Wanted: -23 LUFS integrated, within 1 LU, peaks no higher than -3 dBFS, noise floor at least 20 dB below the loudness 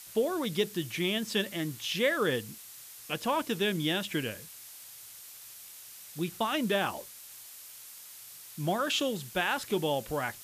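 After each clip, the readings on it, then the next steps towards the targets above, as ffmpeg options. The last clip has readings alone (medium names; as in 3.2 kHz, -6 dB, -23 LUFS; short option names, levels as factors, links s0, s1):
noise floor -49 dBFS; noise floor target -51 dBFS; loudness -31.0 LUFS; peak level -15.0 dBFS; loudness target -23.0 LUFS
-> -af "afftdn=nr=6:nf=-49"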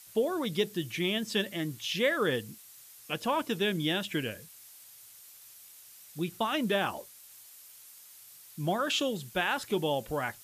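noise floor -53 dBFS; loudness -31.0 LUFS; peak level -15.0 dBFS; loudness target -23.0 LUFS
-> -af "volume=2.51"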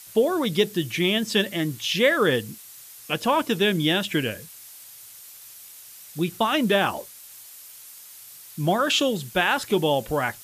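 loudness -23.0 LUFS; peak level -7.0 dBFS; noise floor -45 dBFS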